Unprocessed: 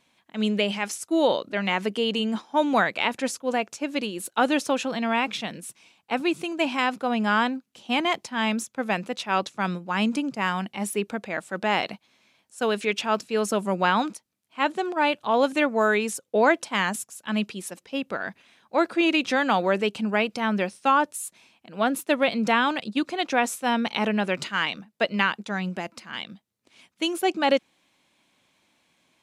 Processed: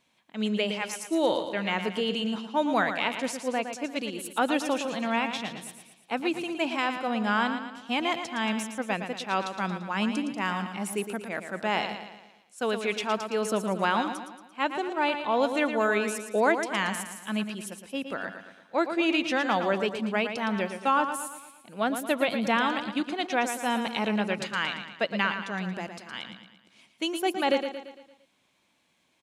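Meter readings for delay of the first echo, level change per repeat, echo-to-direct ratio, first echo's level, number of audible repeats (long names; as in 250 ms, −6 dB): 114 ms, −6.0 dB, −7.5 dB, −8.5 dB, 5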